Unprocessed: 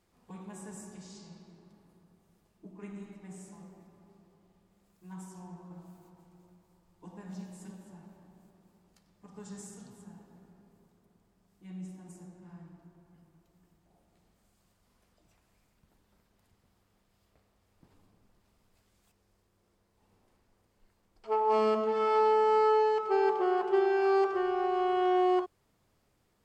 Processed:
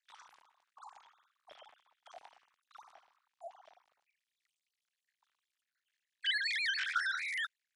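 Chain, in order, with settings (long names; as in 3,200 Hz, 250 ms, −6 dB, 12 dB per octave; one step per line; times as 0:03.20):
three sine waves on the formant tracks
change of speed 3.41×
level −8.5 dB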